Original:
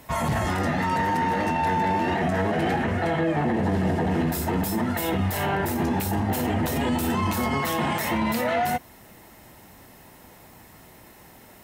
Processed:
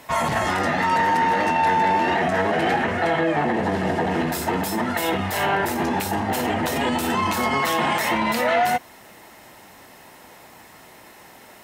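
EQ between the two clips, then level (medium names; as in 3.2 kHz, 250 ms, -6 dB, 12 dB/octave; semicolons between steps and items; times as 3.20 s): bass shelf 110 Hz -6 dB; bass shelf 310 Hz -9.5 dB; treble shelf 11 kHz -10.5 dB; +6.5 dB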